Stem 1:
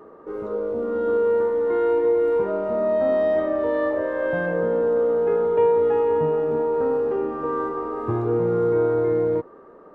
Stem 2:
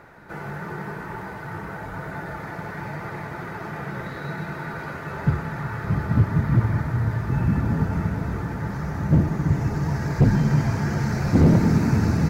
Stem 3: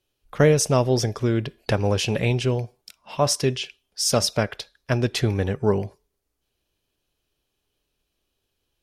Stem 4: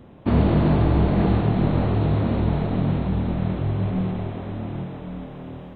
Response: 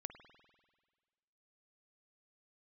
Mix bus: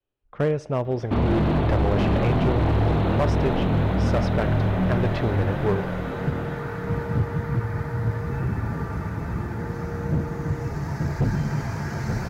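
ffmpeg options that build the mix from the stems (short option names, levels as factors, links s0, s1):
-filter_complex "[0:a]adelay=1300,volume=0.158[s0];[1:a]adelay=1000,volume=0.668,asplit=2[s1][s2];[s2]volume=0.531[s3];[2:a]lowpass=1800,dynaudnorm=f=730:g=3:m=2.11,volume=0.422,asplit=2[s4][s5];[s5]volume=0.422[s6];[3:a]adelay=850,volume=1.19,asplit=3[s7][s8][s9];[s8]volume=0.596[s10];[s9]volume=0.596[s11];[s0][s1][s7]amix=inputs=3:normalize=0,alimiter=limit=0.2:level=0:latency=1:release=281,volume=1[s12];[4:a]atrim=start_sample=2205[s13];[s6][s10]amix=inputs=2:normalize=0[s14];[s14][s13]afir=irnorm=-1:irlink=0[s15];[s3][s11]amix=inputs=2:normalize=0,aecho=0:1:880:1[s16];[s4][s12][s15][s16]amix=inputs=4:normalize=0,adynamicequalizer=threshold=0.0316:dfrequency=190:dqfactor=0.93:tfrequency=190:tqfactor=0.93:attack=5:release=100:ratio=0.375:range=2.5:mode=cutabove:tftype=bell,volume=6.31,asoftclip=hard,volume=0.158"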